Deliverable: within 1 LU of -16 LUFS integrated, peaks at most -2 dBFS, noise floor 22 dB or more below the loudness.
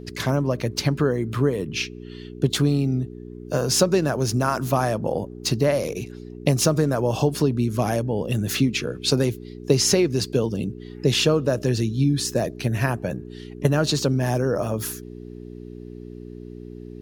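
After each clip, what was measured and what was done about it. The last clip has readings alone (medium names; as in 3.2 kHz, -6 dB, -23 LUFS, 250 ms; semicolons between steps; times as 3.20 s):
hum 60 Hz; highest harmonic 420 Hz; hum level -36 dBFS; loudness -23.0 LUFS; peak level -3.5 dBFS; loudness target -16.0 LUFS
-> de-hum 60 Hz, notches 7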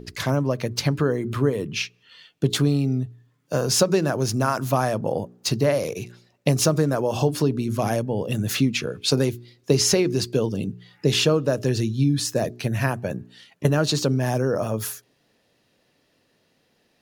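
hum not found; loudness -23.0 LUFS; peak level -4.0 dBFS; loudness target -16.0 LUFS
-> trim +7 dB; peak limiter -2 dBFS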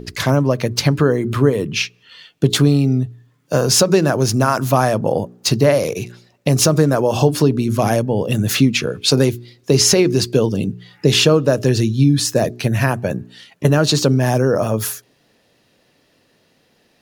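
loudness -16.5 LUFS; peak level -2.0 dBFS; noise floor -59 dBFS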